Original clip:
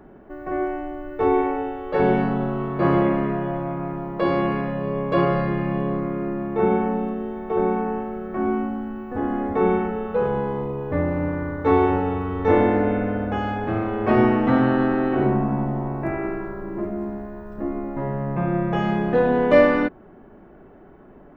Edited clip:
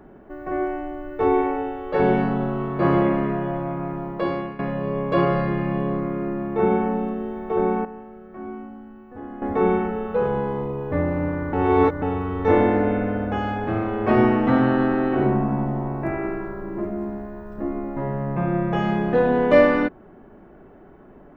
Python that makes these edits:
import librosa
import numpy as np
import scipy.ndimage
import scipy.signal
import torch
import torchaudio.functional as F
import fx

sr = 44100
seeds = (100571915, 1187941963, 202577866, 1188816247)

y = fx.edit(x, sr, fx.fade_out_to(start_s=4.08, length_s=0.51, floor_db=-16.0),
    fx.clip_gain(start_s=7.85, length_s=1.57, db=-11.5),
    fx.reverse_span(start_s=11.53, length_s=0.49), tone=tone)